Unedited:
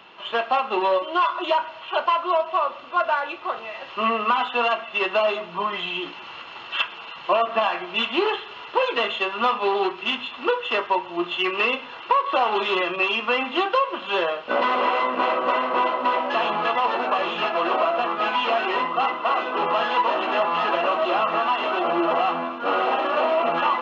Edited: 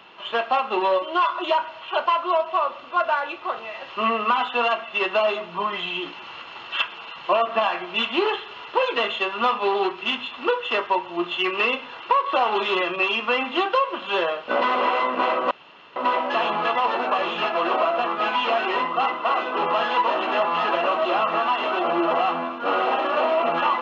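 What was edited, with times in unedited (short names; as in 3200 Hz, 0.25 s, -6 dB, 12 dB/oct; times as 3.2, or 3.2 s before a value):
15.51–15.96 room tone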